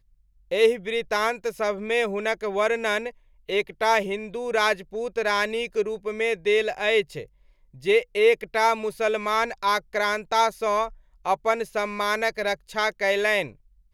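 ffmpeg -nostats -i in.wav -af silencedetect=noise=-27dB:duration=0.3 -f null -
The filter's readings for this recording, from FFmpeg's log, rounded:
silence_start: 0.00
silence_end: 0.52 | silence_duration: 0.52
silence_start: 3.09
silence_end: 3.49 | silence_duration: 0.40
silence_start: 7.22
silence_end: 7.86 | silence_duration: 0.65
silence_start: 10.87
silence_end: 11.26 | silence_duration: 0.39
silence_start: 13.46
silence_end: 13.94 | silence_duration: 0.47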